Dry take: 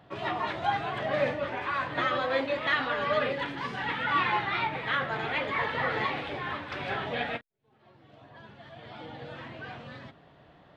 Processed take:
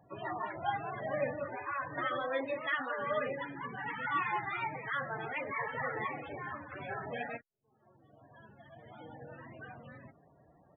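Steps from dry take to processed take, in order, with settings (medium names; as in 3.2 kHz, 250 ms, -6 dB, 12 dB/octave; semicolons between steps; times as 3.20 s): loudest bins only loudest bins 32; resampled via 8 kHz; trim -6 dB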